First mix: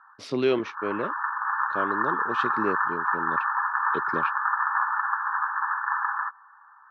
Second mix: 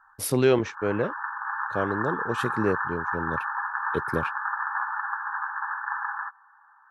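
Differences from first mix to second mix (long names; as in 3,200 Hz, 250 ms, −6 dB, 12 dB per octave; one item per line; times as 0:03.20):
background −8.0 dB
master: remove loudspeaker in its box 240–4,800 Hz, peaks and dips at 490 Hz −6 dB, 830 Hz −8 dB, 1,600 Hz −7 dB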